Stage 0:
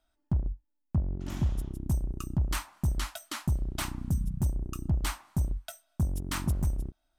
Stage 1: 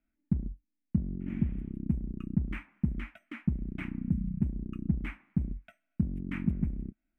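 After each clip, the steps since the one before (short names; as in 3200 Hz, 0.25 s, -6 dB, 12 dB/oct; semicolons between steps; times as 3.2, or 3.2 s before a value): EQ curve 110 Hz 0 dB, 210 Hz +14 dB, 630 Hz -8 dB, 1000 Hz -11 dB, 2300 Hz +7 dB, 4300 Hz -29 dB; gain -6 dB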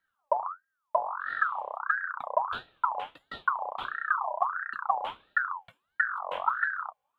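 ring modulator with a swept carrier 1200 Hz, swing 35%, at 1.5 Hz; gain +4 dB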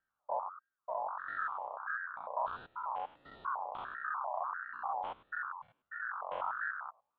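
stepped spectrum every 0.1 s; LPF 1100 Hz 6 dB/oct; gain -1 dB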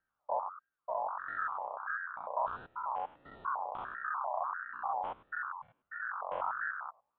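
air absorption 380 m; gain +3.5 dB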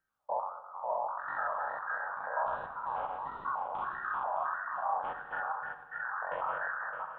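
regenerating reverse delay 0.307 s, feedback 46%, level -4 dB; reverb RT60 1.3 s, pre-delay 3 ms, DRR 7.5 dB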